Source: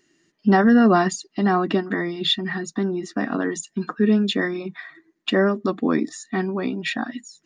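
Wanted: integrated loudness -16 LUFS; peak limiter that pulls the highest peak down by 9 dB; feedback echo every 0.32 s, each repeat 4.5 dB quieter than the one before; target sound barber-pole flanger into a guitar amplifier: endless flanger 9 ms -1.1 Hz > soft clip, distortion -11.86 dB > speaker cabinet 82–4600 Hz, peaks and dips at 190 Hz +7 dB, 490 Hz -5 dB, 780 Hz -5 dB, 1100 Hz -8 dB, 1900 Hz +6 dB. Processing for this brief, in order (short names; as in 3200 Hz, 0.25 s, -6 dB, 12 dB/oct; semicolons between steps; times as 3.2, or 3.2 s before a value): limiter -16.5 dBFS; feedback echo 0.32 s, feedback 60%, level -4.5 dB; endless flanger 9 ms -1.1 Hz; soft clip -24.5 dBFS; speaker cabinet 82–4600 Hz, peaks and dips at 190 Hz +7 dB, 490 Hz -5 dB, 780 Hz -5 dB, 1100 Hz -8 dB, 1900 Hz +6 dB; gain +12.5 dB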